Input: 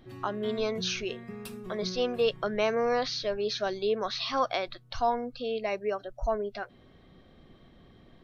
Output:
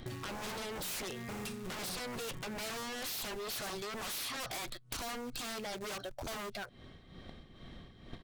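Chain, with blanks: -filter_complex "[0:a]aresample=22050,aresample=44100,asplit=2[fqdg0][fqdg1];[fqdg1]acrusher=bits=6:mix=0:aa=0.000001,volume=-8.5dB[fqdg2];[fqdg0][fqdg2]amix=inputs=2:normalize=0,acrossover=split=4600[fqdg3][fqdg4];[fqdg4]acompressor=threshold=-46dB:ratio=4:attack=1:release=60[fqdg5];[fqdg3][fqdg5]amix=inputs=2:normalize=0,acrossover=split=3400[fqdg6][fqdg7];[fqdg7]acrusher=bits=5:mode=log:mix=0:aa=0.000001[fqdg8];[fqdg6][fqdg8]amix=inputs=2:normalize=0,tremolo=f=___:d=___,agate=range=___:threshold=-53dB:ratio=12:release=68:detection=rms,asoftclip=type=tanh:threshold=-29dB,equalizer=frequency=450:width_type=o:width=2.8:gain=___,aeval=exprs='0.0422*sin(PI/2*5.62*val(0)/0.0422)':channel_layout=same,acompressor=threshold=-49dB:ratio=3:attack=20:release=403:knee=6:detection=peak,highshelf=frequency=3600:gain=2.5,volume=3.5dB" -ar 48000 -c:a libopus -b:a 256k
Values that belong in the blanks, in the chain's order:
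2.2, 0.71, -12dB, -5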